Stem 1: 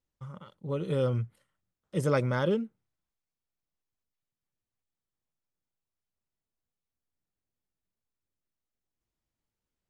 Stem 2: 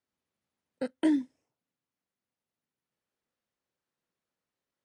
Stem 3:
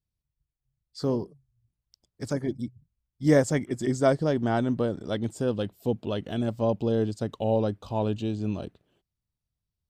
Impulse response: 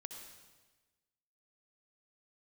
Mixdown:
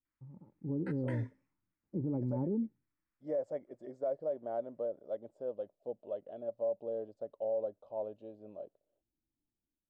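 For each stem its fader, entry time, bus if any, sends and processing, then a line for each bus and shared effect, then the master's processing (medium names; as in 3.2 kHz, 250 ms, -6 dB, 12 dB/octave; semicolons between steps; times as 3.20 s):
-4.0 dB, 0.00 s, no send, bass shelf 270 Hz +9 dB; level rider gain up to 7.5 dB; cascade formant filter u
-13.5 dB, 0.05 s, no send, high-order bell 1.5 kHz +16 dB; feedback comb 130 Hz, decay 0.35 s, harmonics all, mix 40%
-2.0 dB, 0.00 s, no send, band-pass filter 580 Hz, Q 6.9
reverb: none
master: peak limiter -27 dBFS, peak gain reduction 10.5 dB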